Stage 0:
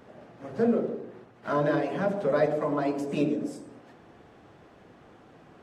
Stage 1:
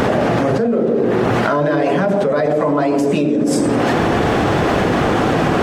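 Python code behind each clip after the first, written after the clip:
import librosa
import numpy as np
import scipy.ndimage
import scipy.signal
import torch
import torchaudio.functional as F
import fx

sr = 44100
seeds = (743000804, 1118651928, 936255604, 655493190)

y = fx.env_flatten(x, sr, amount_pct=100)
y = y * 10.0 ** (4.0 / 20.0)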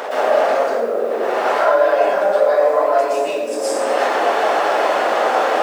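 y = fx.quant_companded(x, sr, bits=8)
y = fx.ladder_highpass(y, sr, hz=480.0, resonance_pct=35)
y = fx.rev_plate(y, sr, seeds[0], rt60_s=1.0, hf_ratio=0.75, predelay_ms=105, drr_db=-9.0)
y = y * 10.0 ** (-2.5 / 20.0)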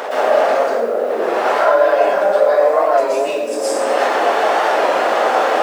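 y = fx.record_warp(x, sr, rpm=33.33, depth_cents=100.0)
y = y * 10.0 ** (1.5 / 20.0)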